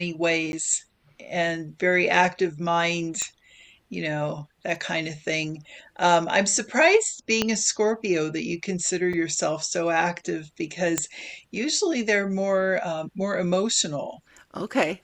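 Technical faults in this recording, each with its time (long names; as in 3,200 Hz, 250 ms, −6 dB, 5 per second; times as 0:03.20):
0:00.52–0:00.53: drop-out 11 ms
0:03.22: click −14 dBFS
0:07.42: click −7 dBFS
0:09.13: drop-out 4.6 ms
0:10.98: click −8 dBFS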